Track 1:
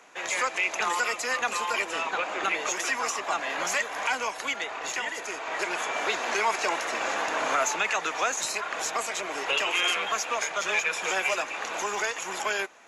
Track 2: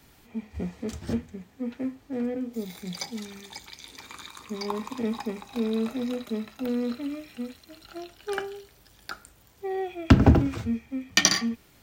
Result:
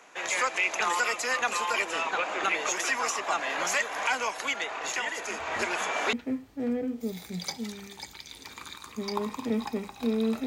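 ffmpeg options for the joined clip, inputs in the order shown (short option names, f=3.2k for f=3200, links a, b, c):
-filter_complex "[1:a]asplit=2[a][b];[0:a]apad=whole_dur=10.46,atrim=end=10.46,atrim=end=6.132[c];[b]atrim=start=1.658:end=5.99[d];[a]atrim=start=0.72:end=1.66,asetpts=PTS-STARTPTS,volume=-16.5dB,afade=t=in:d=0.004:c=hsin,afade=t=out:st=0.936:d=0.004:c=hsin,adelay=5190[e];[c][d]acrossfade=d=0.004:c1=hsin:c2=hsin[f];[f][e]amix=inputs=2:normalize=0"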